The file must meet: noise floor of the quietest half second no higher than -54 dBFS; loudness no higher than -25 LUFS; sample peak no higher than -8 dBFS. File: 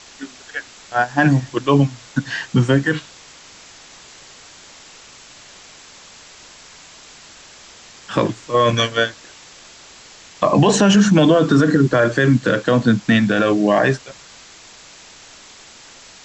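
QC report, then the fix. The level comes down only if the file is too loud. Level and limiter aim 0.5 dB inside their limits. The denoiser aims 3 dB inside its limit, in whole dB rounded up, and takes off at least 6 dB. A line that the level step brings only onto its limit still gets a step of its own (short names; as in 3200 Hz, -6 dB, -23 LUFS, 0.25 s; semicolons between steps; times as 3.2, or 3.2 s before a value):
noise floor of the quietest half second -43 dBFS: fail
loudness -16.5 LUFS: fail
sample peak -4.5 dBFS: fail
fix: denoiser 6 dB, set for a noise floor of -43 dBFS; gain -9 dB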